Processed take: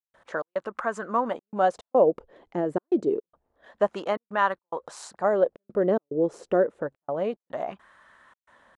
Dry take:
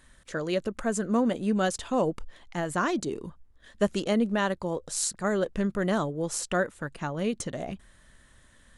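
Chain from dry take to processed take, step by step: in parallel at -2 dB: compressor, threshold -34 dBFS, peak gain reduction 15 dB; on the sum: step gate ".xx.xxxxxx" 108 bpm -60 dB; wah 0.28 Hz 410–1100 Hz, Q 2.1; gain +8 dB

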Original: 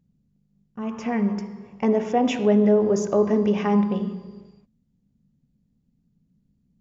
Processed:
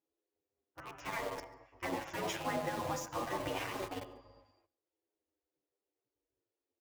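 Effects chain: spectral gate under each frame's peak -20 dB weak; HPF 46 Hz 12 dB/oct; high shelf 2100 Hz -9.5 dB; in parallel at -11.5 dB: companded quantiser 2-bit; on the sum: echo 0.141 s -24 dB; endless flanger 9.2 ms -0.42 Hz; gain +1 dB

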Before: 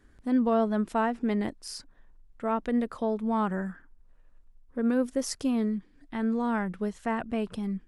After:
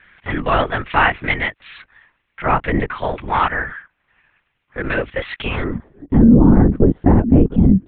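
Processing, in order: 2.46–2.89 tilt -4 dB/oct; band-pass sweep 2300 Hz -> 280 Hz, 5.49–6.12; LPC vocoder at 8 kHz whisper; maximiser +27.5 dB; gain -1 dB

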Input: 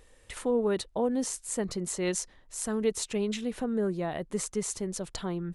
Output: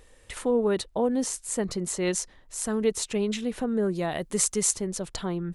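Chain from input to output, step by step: 3.95–4.71 high shelf 2900 Hz +9.5 dB; gain +3 dB

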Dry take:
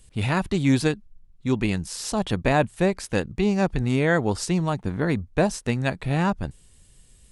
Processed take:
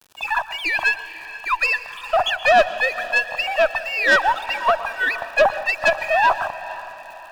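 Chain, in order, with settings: sine-wave speech; steep high-pass 610 Hz 72 dB/oct; AGC gain up to 11 dB; transient shaper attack 0 dB, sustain +4 dB; in parallel at +1 dB: compressor, threshold -25 dBFS, peak gain reduction 16 dB; on the sum: loudest bins only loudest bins 32; crossover distortion -43 dBFS; crackle 150/s -36 dBFS; tube stage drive 10 dB, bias 0.45; Butterworth band-stop 2100 Hz, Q 5.7; diffused feedback echo 0.49 s, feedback 47%, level -15.5 dB; on a send at -14.5 dB: reverb RT60 0.60 s, pre-delay 0.108 s; on the sum: gain +2 dB

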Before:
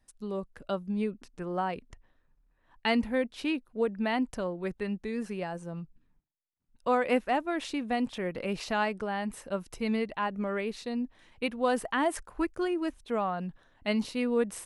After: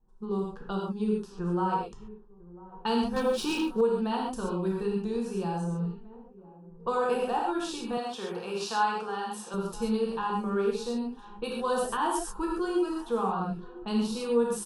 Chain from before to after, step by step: on a send: feedback echo 0.997 s, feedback 44%, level -23.5 dB; on the sum: non-linear reverb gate 0.16 s flat, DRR -3 dB; low-pass opened by the level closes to 680 Hz, open at -27 dBFS; 7.97–9.54 weighting filter A; in parallel at +2 dB: compressor, threshold -36 dBFS, peak gain reduction 18 dB; 3.16–3.81 on the sum: sample leveller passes 2; fixed phaser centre 410 Hz, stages 8; gain -2 dB

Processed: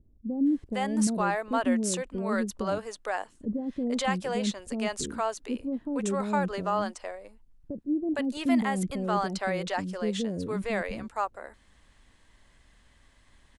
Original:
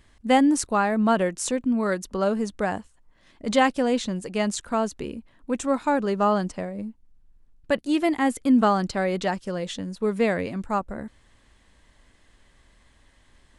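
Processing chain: limiter -15.5 dBFS, peak gain reduction 9 dB; bands offset in time lows, highs 0.46 s, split 440 Hz; gain -2 dB

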